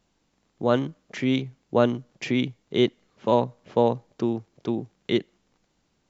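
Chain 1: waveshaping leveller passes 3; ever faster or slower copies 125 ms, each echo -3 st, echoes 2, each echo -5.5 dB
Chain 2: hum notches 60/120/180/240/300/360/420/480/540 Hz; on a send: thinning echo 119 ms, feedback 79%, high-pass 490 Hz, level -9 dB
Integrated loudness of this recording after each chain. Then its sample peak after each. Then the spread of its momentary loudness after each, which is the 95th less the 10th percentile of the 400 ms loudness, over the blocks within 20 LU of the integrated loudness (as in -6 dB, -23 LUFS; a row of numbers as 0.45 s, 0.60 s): -17.5 LUFS, -27.0 LUFS; -4.0 dBFS, -7.0 dBFS; 6 LU, 8 LU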